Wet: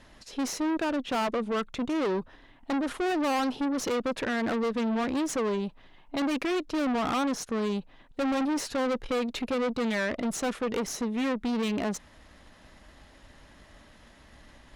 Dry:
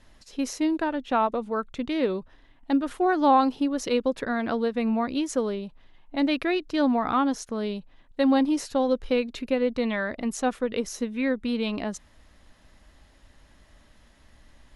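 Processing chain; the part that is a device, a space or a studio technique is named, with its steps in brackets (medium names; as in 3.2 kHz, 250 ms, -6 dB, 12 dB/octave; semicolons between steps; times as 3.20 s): tube preamp driven hard (valve stage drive 33 dB, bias 0.5; bass shelf 90 Hz -7.5 dB; treble shelf 4.7 kHz -5 dB); trim +8 dB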